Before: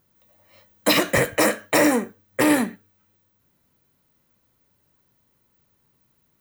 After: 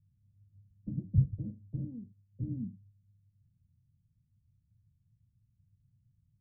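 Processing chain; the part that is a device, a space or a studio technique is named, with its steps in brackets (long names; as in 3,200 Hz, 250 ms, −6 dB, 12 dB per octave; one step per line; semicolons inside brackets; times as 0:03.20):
0:01.84–0:02.42: spectral tilt +2 dB per octave
the neighbour's flat through the wall (low-pass filter 150 Hz 24 dB per octave; parametric band 100 Hz +7.5 dB 0.97 octaves)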